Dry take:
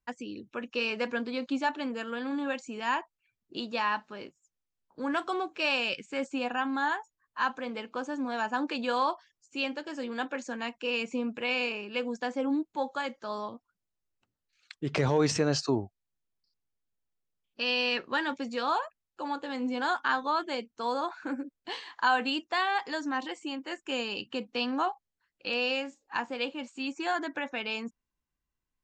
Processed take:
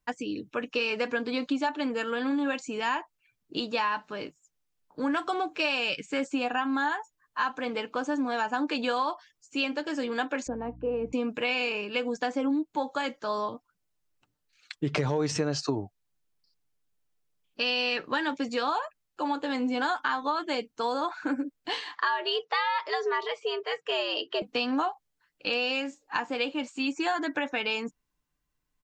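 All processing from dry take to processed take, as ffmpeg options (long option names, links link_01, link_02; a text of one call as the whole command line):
ffmpeg -i in.wav -filter_complex "[0:a]asettb=1/sr,asplit=3[link_01][link_02][link_03];[link_01]atrim=end=10.474[link_04];[link_02]atrim=start=10.47:end=11.13,asetpts=PTS-STARTPTS,afade=type=in:duration=0.004:curve=qsin,afade=type=out:start_time=0.656:duration=0.004:curve=qsin,asuperpass=centerf=350:order=4:qfactor=0.62,aeval=exprs='val(0)+0.00282*(sin(2*PI*60*n/s)+sin(2*PI*2*60*n/s)/2+sin(2*PI*3*60*n/s)/3+sin(2*PI*4*60*n/s)/4+sin(2*PI*5*60*n/s)/5)':channel_layout=same[link_05];[link_03]atrim=start=11.126[link_06];[link_04][link_05]acrossfade=duration=0.004:curve1=hsin:curve2=qsin[link_07];[link_07][link_06]acrossfade=duration=0.004:curve1=qsin:curve2=hsin,asettb=1/sr,asplit=3[link_08][link_09][link_10];[link_08]atrim=end=21.954[link_11];[link_09]atrim=start=21.95:end=24.42,asetpts=PTS-STARTPTS,afade=type=in:duration=0.004:curve=qsin,afade=type=out:start_time=2.466:duration=0.004:curve=qsin,afreqshift=130,lowpass=frequency=5200:width=0.5412,lowpass=frequency=5200:width=1.3066[link_12];[link_10]atrim=start=24.416[link_13];[link_11][link_12]acrossfade=duration=0.004:curve1=hsin:curve2=qsin[link_14];[link_14][link_13]acrossfade=duration=0.004:curve1=qsin:curve2=hsin,aecho=1:1:6.7:0.36,acompressor=threshold=-30dB:ratio=6,volume=5.5dB" out.wav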